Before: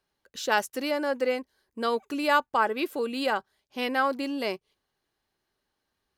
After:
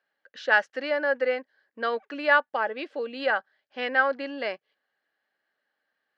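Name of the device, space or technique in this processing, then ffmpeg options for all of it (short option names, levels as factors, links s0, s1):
phone earpiece: -filter_complex "[0:a]asettb=1/sr,asplit=3[s0][s1][s2];[s0]atrim=end=2.494[s3];[s1]atrim=start=2.49:end=3.2,asetpts=PTS-STARTPTS,afade=t=in:d=0.004:c=qsin,afade=t=out:st=0.706:d=0.004:c=qsin,equalizer=f=1500:t=o:w=0.99:g=-8[s4];[s2]atrim=start=3.196[s5];[s3][s4]acrossfade=d=0.004:c1=hsin:c2=qsin[s6];[s6][s5]acrossfade=d=0.004:c1=qsin:c2=hsin,highpass=380,equalizer=f=380:t=q:w=4:g=-10,equalizer=f=550:t=q:w=4:g=3,equalizer=f=1000:t=q:w=4:g=-8,equalizer=f=1700:t=q:w=4:g=9,equalizer=f=2500:t=q:w=4:g=-4,equalizer=f=3700:t=q:w=4:g=-6,lowpass=f=3900:w=0.5412,lowpass=f=3900:w=1.3066,volume=1.26"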